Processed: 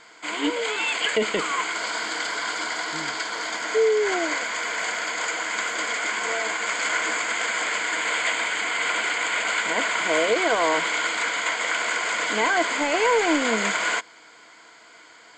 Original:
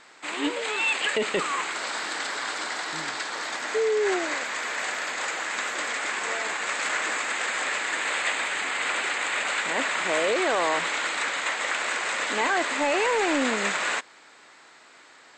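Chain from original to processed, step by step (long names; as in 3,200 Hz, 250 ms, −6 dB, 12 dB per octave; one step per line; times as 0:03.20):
EQ curve with evenly spaced ripples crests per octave 1.8, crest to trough 9 dB
level +1.5 dB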